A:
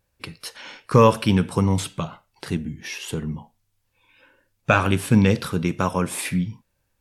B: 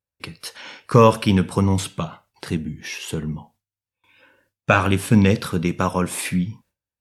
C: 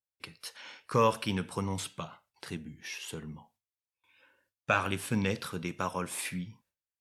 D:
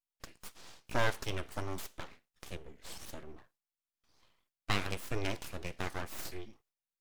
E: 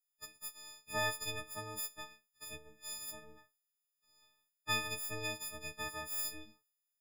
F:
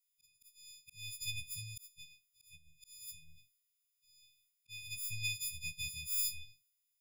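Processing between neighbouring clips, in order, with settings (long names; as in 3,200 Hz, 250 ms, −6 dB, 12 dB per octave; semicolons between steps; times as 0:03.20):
high-pass filter 50 Hz 12 dB per octave; noise gate with hold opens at −53 dBFS; level +1.5 dB
low-shelf EQ 460 Hz −8 dB; level −9 dB
full-wave rectification; level −3 dB
every partial snapped to a pitch grid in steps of 6 semitones; level −8.5 dB
linear-phase brick-wall band-stop 170–1,900 Hz; volume swells 545 ms; level +4 dB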